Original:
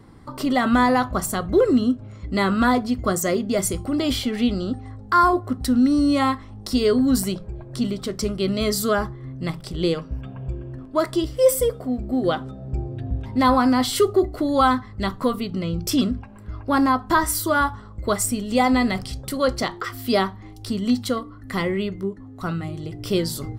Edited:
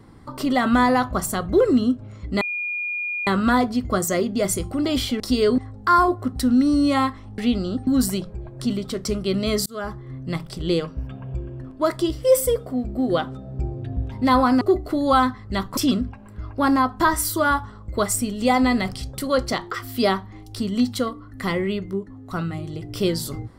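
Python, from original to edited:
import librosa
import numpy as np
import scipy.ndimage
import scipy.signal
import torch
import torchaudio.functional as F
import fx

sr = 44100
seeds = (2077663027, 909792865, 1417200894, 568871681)

y = fx.edit(x, sr, fx.insert_tone(at_s=2.41, length_s=0.86, hz=2430.0, db=-24.0),
    fx.swap(start_s=4.34, length_s=0.49, other_s=6.63, other_length_s=0.38),
    fx.fade_in_span(start_s=8.8, length_s=0.41),
    fx.cut(start_s=13.75, length_s=0.34),
    fx.cut(start_s=15.25, length_s=0.62), tone=tone)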